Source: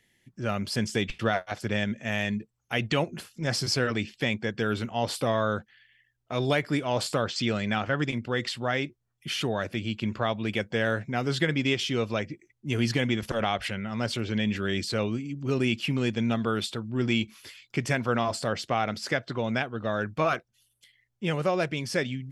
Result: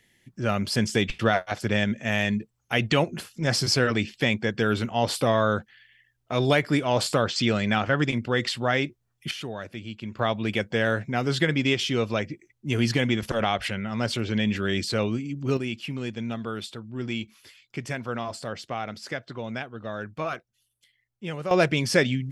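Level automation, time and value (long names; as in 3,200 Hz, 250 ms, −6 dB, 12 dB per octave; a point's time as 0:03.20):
+4 dB
from 0:09.31 −6 dB
from 0:10.19 +2.5 dB
from 0:15.57 −5 dB
from 0:21.51 +7 dB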